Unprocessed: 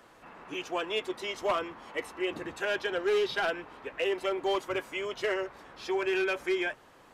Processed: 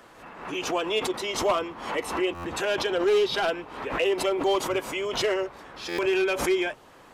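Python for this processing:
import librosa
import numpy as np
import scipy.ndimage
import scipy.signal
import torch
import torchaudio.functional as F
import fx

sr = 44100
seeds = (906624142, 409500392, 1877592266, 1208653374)

y = fx.dynamic_eq(x, sr, hz=1700.0, q=1.9, threshold_db=-48.0, ratio=4.0, max_db=-6)
y = fx.buffer_glitch(y, sr, at_s=(2.34, 5.88), block=512, repeats=8)
y = fx.pre_swell(y, sr, db_per_s=77.0)
y = y * librosa.db_to_amplitude(5.5)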